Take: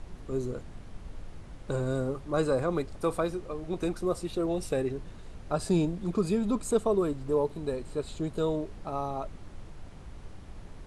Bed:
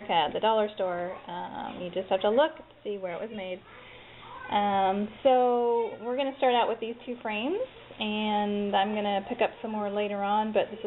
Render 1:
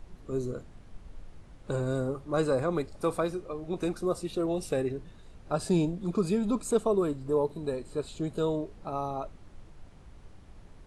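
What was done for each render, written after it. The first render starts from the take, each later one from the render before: noise print and reduce 6 dB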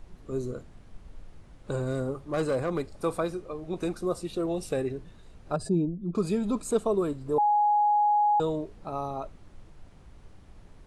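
1.77–2.96 hard clip -22 dBFS; 5.56–6.15 spectral contrast raised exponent 1.6; 7.38–8.4 bleep 833 Hz -19.5 dBFS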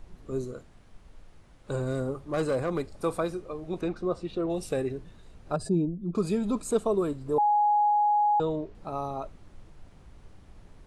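0.44–1.71 low shelf 460 Hz -5.5 dB; 3.81–4.5 LPF 3600 Hz; 7.9–8.75 air absorption 110 m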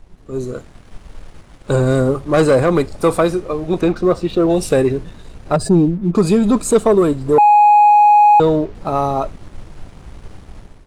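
sample leveller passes 1; AGC gain up to 12.5 dB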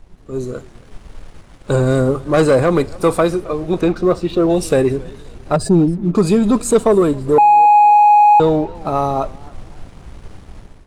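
warbling echo 0.272 s, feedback 35%, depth 130 cents, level -23 dB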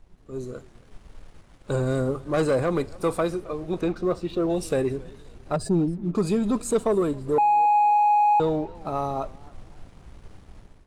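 gain -10 dB

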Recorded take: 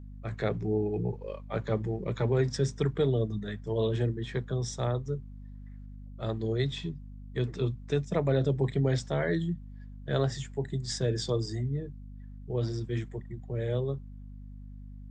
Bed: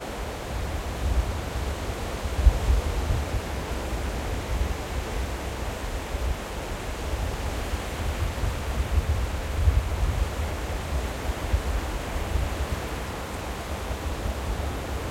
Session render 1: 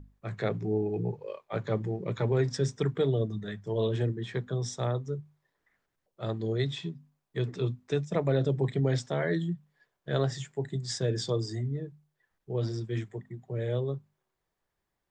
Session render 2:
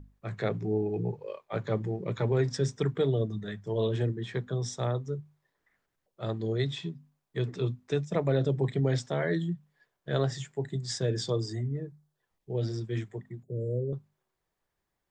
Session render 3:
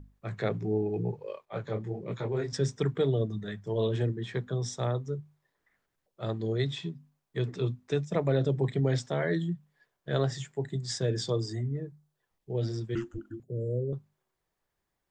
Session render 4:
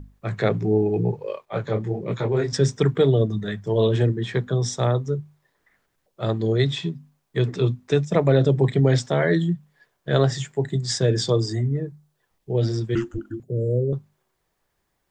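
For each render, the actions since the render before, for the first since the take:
notches 50/100/150/200/250 Hz
11.52–12.68 bell 5300 Hz -> 990 Hz -13 dB 0.35 oct; 13.43–13.93 Chebyshev band-stop 520–7800 Hz, order 4
1.45–2.53 detuned doubles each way 58 cents; 12.95–13.4 frequency shift -460 Hz
gain +9 dB

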